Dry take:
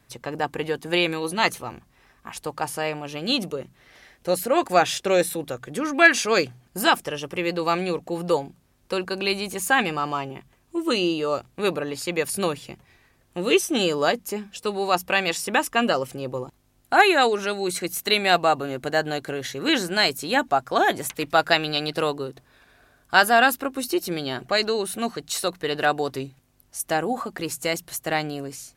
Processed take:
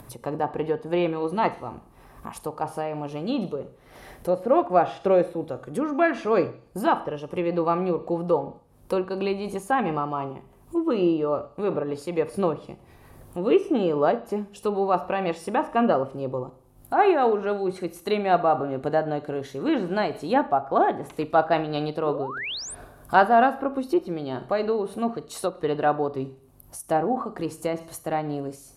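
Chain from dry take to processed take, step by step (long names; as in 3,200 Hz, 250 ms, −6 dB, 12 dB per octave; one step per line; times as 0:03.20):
flat-topped bell 3,400 Hz −11.5 dB 2.7 octaves
four-comb reverb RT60 0.46 s, combs from 27 ms, DRR 12 dB
upward compression, threshold −34 dBFS
sound drawn into the spectrogram rise, 0:22.04–0:22.75, 290–10,000 Hz −33 dBFS
treble cut that deepens with the level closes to 2,500 Hz, closed at −21.5 dBFS
amplitude modulation by smooth noise, depth 60%
level +3.5 dB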